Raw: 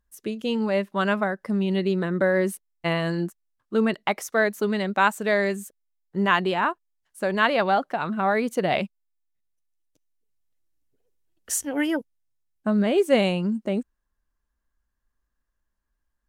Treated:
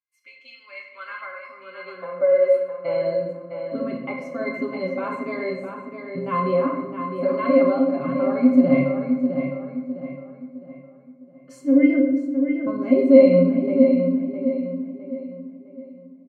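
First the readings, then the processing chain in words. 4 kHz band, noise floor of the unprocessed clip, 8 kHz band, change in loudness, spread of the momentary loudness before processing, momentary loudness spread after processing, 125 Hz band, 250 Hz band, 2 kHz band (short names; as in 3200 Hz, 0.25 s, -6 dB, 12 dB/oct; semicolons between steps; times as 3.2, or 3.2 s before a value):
under -10 dB, -79 dBFS, under -20 dB, +3.5 dB, 9 LU, 21 LU, -0.5 dB, +6.5 dB, -7.5 dB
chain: comb 7.3 ms, depth 87%; in parallel at -1 dB: limiter -15 dBFS, peak gain reduction 12 dB; on the sum: high-pass sweep 2200 Hz -> 230 Hz, 0.69–3.77; added harmonics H 2 -41 dB, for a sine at 2.5 dBFS; octave resonator C, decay 0.19 s; on a send: darkening echo 0.659 s, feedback 40%, low-pass 4000 Hz, level -7 dB; on the sum: shoebox room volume 440 m³, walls mixed, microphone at 1.2 m; gain +5 dB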